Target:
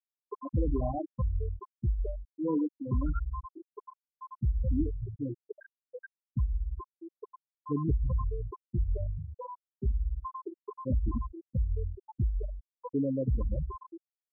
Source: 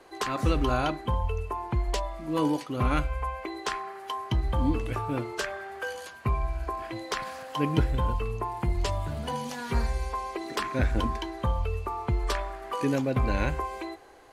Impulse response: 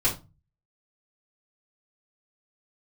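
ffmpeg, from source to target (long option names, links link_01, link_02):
-filter_complex "[0:a]acrossover=split=1200|5700[link_01][link_02][link_03];[link_01]adelay=110[link_04];[link_02]adelay=210[link_05];[link_04][link_05][link_03]amix=inputs=3:normalize=0,acrossover=split=2100[link_06][link_07];[link_06]volume=20dB,asoftclip=hard,volume=-20dB[link_08];[link_08][link_07]amix=inputs=2:normalize=0,afftfilt=real='re*gte(hypot(re,im),0.178)':imag='im*gte(hypot(re,im),0.178)':win_size=1024:overlap=0.75,volume=-1.5dB"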